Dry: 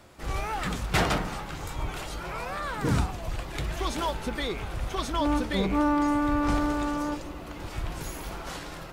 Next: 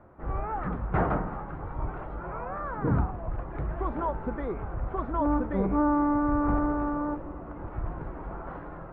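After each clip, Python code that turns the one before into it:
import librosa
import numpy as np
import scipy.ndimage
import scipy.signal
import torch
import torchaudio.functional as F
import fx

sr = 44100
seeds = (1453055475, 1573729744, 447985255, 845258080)

y = scipy.signal.sosfilt(scipy.signal.butter(4, 1400.0, 'lowpass', fs=sr, output='sos'), x)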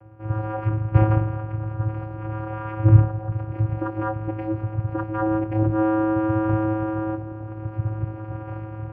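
y = fx.vocoder(x, sr, bands=8, carrier='square', carrier_hz=108.0)
y = F.gain(torch.from_numpy(y), 8.0).numpy()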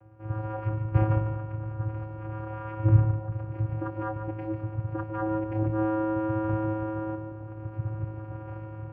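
y = x + 10.0 ** (-8.5 / 20.0) * np.pad(x, (int(146 * sr / 1000.0), 0))[:len(x)]
y = F.gain(torch.from_numpy(y), -6.5).numpy()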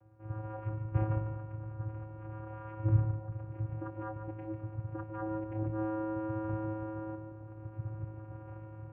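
y = fx.air_absorb(x, sr, metres=220.0)
y = F.gain(torch.from_numpy(y), -7.5).numpy()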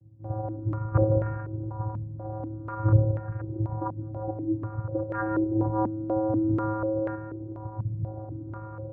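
y = fx.filter_held_lowpass(x, sr, hz=4.1, low_hz=210.0, high_hz=1700.0)
y = F.gain(torch.from_numpy(y), 6.5).numpy()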